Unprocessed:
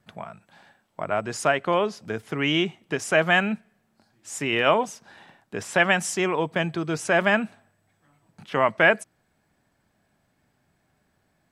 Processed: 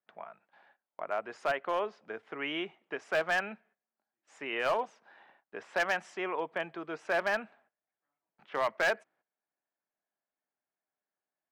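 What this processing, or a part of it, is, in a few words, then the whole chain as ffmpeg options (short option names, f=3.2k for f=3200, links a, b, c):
walkie-talkie: -af "highpass=440,lowpass=2.3k,asoftclip=type=hard:threshold=-16dB,agate=range=-15dB:threshold=-58dB:ratio=16:detection=peak,volume=-7dB"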